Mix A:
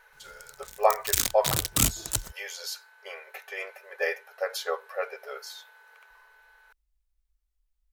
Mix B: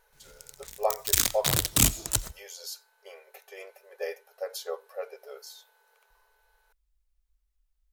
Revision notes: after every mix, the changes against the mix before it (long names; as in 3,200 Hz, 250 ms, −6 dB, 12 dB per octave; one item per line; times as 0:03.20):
speech: add parametric band 1,700 Hz −14 dB 2.1 octaves
reverb: on, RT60 0.35 s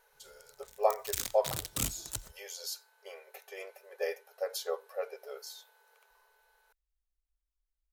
background −12.0 dB